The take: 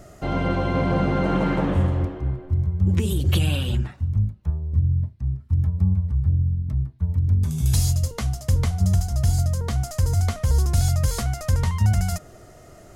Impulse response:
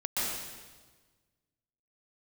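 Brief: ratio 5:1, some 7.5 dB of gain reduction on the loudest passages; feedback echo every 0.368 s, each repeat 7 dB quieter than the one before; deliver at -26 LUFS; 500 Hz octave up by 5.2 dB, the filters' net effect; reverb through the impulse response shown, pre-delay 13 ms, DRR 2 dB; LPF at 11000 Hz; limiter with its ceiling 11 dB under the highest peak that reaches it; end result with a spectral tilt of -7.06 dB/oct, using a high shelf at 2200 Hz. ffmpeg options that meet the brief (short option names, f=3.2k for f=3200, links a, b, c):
-filter_complex "[0:a]lowpass=11k,equalizer=f=500:t=o:g=6.5,highshelf=f=2.2k:g=-4,acompressor=threshold=-23dB:ratio=5,alimiter=level_in=1dB:limit=-24dB:level=0:latency=1,volume=-1dB,aecho=1:1:368|736|1104|1472|1840:0.447|0.201|0.0905|0.0407|0.0183,asplit=2[a][b];[1:a]atrim=start_sample=2205,adelay=13[c];[b][c]afir=irnorm=-1:irlink=0,volume=-10dB[d];[a][d]amix=inputs=2:normalize=0,volume=4dB"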